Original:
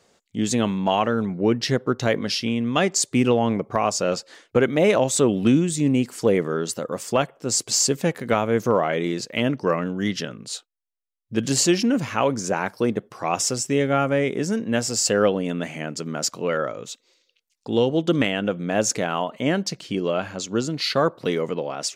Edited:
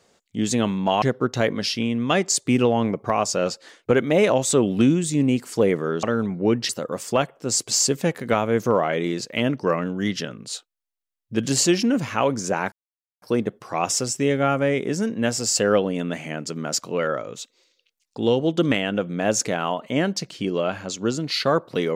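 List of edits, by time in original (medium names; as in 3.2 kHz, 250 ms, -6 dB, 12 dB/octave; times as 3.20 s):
1.02–1.68 s: move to 6.69 s
12.72 s: insert silence 0.50 s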